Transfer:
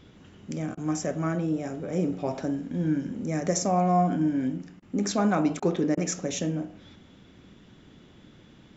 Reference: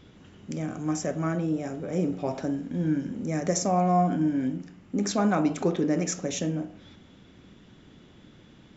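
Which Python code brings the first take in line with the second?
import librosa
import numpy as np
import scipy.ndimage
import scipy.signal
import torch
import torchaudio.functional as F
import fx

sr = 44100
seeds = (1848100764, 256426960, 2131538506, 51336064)

y = fx.fix_interpolate(x, sr, at_s=(0.75, 4.8, 5.6, 5.95), length_ms=22.0)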